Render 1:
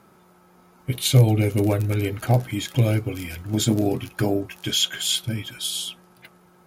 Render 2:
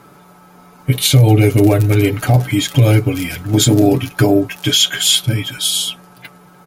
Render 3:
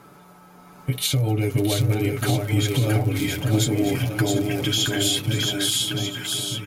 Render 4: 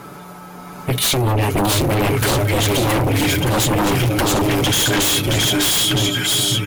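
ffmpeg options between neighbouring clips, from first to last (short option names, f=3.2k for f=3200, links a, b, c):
-af "aecho=1:1:6.9:0.58,alimiter=level_in=10.5dB:limit=-1dB:release=50:level=0:latency=1,volume=-1dB"
-filter_complex "[0:a]acompressor=threshold=-18dB:ratio=2.5,asplit=2[a][b];[b]aecho=0:1:670|1240|1724|2135|2485:0.631|0.398|0.251|0.158|0.1[c];[a][c]amix=inputs=2:normalize=0,volume=-4.5dB"
-af "aeval=exprs='0.398*sin(PI/2*5.01*val(0)/0.398)':c=same,volume=-5.5dB"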